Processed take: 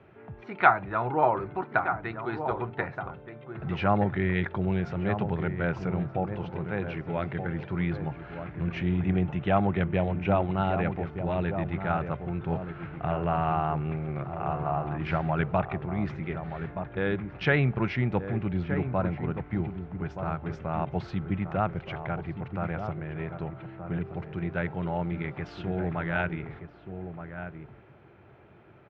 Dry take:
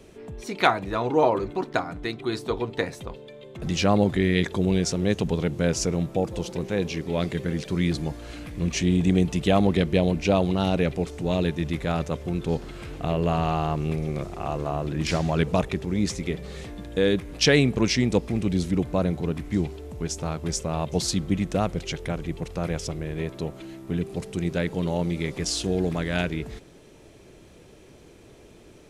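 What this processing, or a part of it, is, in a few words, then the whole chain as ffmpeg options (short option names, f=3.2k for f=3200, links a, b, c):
bass cabinet: -filter_complex "[0:a]bass=f=250:g=-3,treble=f=4k:g=2,asplit=2[a][b];[b]adelay=1224,volume=-8dB,highshelf=f=4k:g=-27.6[c];[a][c]amix=inputs=2:normalize=0,asettb=1/sr,asplit=3[d][e][f];[d]atrim=end=9.044[g];[e]atrim=start=9.04:end=10.49,asetpts=PTS-STARTPTS,afade=t=in:d=0.004:c=qsin,afade=t=out:st=1.446:d=0.004:c=qsin,equalizer=f=4.6k:t=o:w=0.23:g=-12[h];[f]atrim=start=10.486[i];[g][h]acrossfade=d=0.004:c1=hsin:c2=qsin[j];[j][i]acrossfade=d=0.004:c1=qsin:c2=hsin,highpass=82,equalizer=f=92:t=q:w=4:g=6,equalizer=f=130:t=q:w=4:g=7,equalizer=f=270:t=q:w=4:g=-7,equalizer=f=470:t=q:w=4:g=-7,equalizer=f=810:t=q:w=4:g=5,equalizer=f=1.4k:t=q:w=4:g=8,lowpass=f=2.4k:w=0.5412,lowpass=f=2.4k:w=1.3066,volume=-3dB"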